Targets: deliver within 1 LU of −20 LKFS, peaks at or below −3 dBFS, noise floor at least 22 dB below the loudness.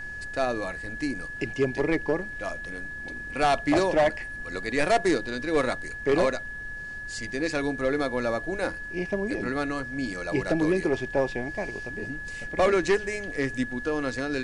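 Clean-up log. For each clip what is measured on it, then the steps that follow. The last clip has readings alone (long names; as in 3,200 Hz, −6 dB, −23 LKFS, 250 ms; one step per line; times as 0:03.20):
interfering tone 1,700 Hz; level of the tone −35 dBFS; background noise floor −37 dBFS; target noise floor −50 dBFS; integrated loudness −27.5 LKFS; sample peak −14.0 dBFS; target loudness −20.0 LKFS
→ notch filter 1,700 Hz, Q 30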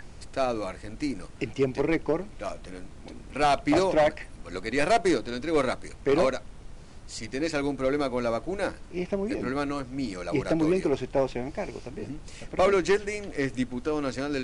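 interfering tone none found; background noise floor −45 dBFS; target noise floor −50 dBFS
→ noise reduction from a noise print 6 dB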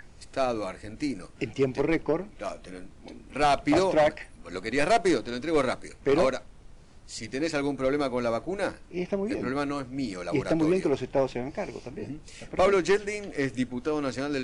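background noise floor −50 dBFS; integrated loudness −28.0 LKFS; sample peak −14.5 dBFS; target loudness −20.0 LKFS
→ level +8 dB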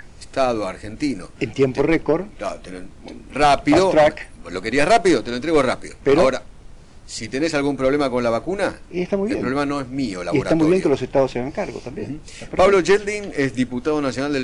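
integrated loudness −20.0 LKFS; sample peak −6.5 dBFS; background noise floor −42 dBFS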